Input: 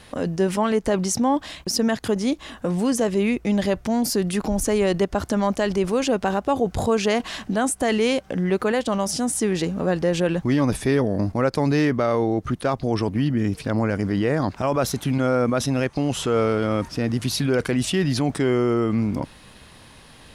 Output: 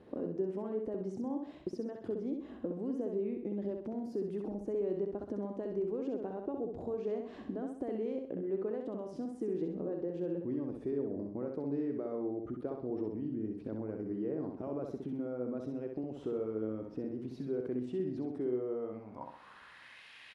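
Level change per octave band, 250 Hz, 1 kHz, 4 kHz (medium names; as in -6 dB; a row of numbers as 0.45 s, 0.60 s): -15.0 dB, -23.5 dB, under -30 dB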